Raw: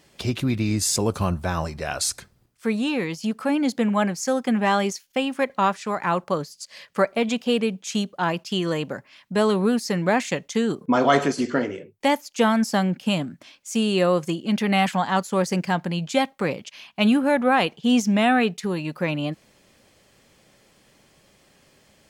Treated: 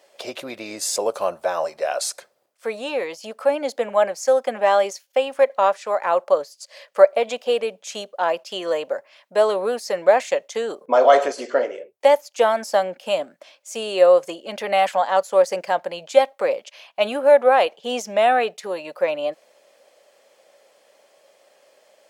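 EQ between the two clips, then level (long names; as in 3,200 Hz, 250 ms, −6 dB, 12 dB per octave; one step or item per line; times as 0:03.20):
high-pass with resonance 570 Hz, resonance Q 4.2
−2.0 dB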